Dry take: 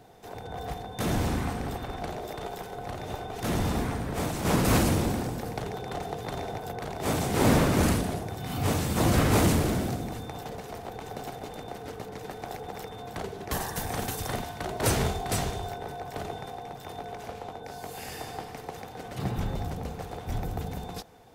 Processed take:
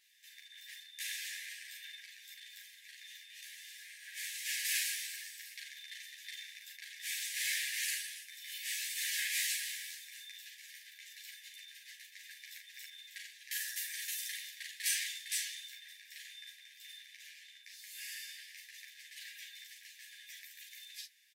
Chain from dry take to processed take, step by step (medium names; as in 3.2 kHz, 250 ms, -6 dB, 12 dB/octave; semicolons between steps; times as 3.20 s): brick-wall FIR high-pass 1.6 kHz; 1.90–4.03 s: compression 10:1, threshold -46 dBFS, peak gain reduction 11 dB; early reflections 40 ms -5.5 dB, 60 ms -14.5 dB; three-phase chorus